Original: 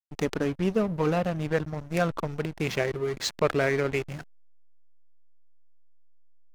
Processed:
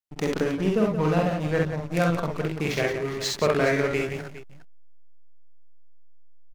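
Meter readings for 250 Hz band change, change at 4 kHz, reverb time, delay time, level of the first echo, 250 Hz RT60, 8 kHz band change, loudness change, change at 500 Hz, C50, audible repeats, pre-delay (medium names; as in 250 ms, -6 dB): +3.5 dB, +3.0 dB, no reverb, 47 ms, -4.0 dB, no reverb, +3.0 dB, +3.0 dB, +2.5 dB, no reverb, 3, no reverb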